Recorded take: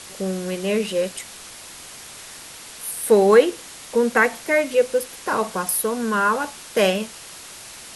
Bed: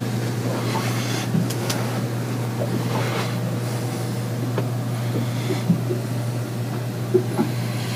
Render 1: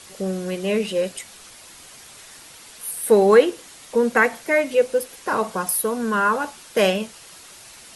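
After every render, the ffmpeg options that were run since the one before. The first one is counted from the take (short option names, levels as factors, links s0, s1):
-af "afftdn=nr=6:nf=-40"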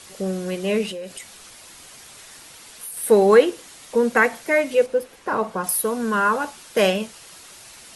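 -filter_complex "[0:a]asettb=1/sr,asplit=3[s0][s1][s2];[s0]atrim=end=0.914[s3];[s1]atrim=start=0.91:end=2.97,asetpts=PTS-STARTPTS,afade=t=in:d=0.004:c=qsin,afade=t=out:st=2.056:d=0.004:c=qsin,acompressor=threshold=0.0316:ratio=6:attack=3.2:release=140:knee=1:detection=peak[s4];[s2]atrim=start=2.966[s5];[s3][s4]acrossfade=d=0.004:c1=hsin:c2=qsin[s6];[s6][s5]acrossfade=d=0.004:c1=qsin:c2=hsin,asettb=1/sr,asplit=3[s7][s8][s9];[s7]atrim=end=4.864[s10];[s8]atrim=start=4.86:end=5.64,asetpts=PTS-STARTPTS,afade=t=in:d=0.004:c=qsin,afade=t=out:st=0.776:d=0.004:c=qsin,highshelf=f=3500:g=-12[s11];[s9]atrim=start=5.636[s12];[s10][s11]acrossfade=d=0.004:c1=hsin:c2=qsin[s13];[s13][s12]acrossfade=d=0.004:c1=qsin:c2=hsin"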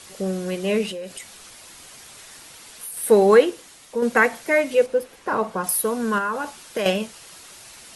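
-filter_complex "[0:a]asettb=1/sr,asplit=3[s0][s1][s2];[s0]atrim=end=6.184[s3];[s1]atrim=start=6.18:end=6.86,asetpts=PTS-STARTPTS,afade=t=in:d=0.004:c=qsin,afade=t=out:st=0.676:d=0.004:c=qsin,acompressor=threshold=0.0708:ratio=3:attack=3.2:release=140:knee=1:detection=peak[s4];[s2]atrim=start=6.856[s5];[s3][s4]acrossfade=d=0.004:c1=hsin:c2=qsin[s6];[s6][s5]acrossfade=d=0.004:c1=qsin:c2=hsin,asplit=2[s7][s8];[s7]atrim=end=4.02,asetpts=PTS-STARTPTS,afade=t=out:st=3.3:d=0.72:silence=0.473151[s9];[s8]atrim=start=4.02,asetpts=PTS-STARTPTS,afade=t=in:d=0.004:c=hsin:silence=0.473151[s10];[s9][s10]concat=n=2:v=0:a=1"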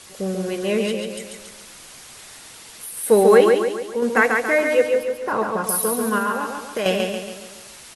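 -af "aecho=1:1:140|280|420|560|700|840:0.631|0.303|0.145|0.0698|0.0335|0.0161"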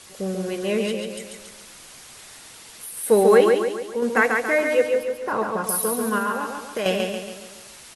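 -af "volume=0.794"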